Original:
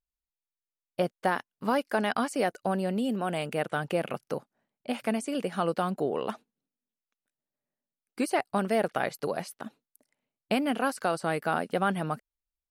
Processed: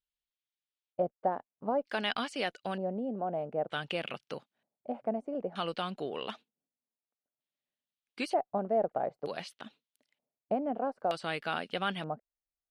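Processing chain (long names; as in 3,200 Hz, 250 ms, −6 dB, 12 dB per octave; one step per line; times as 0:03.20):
harmonic generator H 4 −39 dB, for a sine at −13.5 dBFS
auto-filter low-pass square 0.54 Hz 690–3,300 Hz
first-order pre-emphasis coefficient 0.8
level +5.5 dB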